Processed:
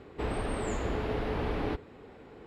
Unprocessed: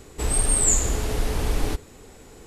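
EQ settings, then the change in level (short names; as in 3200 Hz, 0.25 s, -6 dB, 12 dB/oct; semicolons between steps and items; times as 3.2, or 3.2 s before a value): HPF 170 Hz 6 dB/oct; air absorption 400 m; 0.0 dB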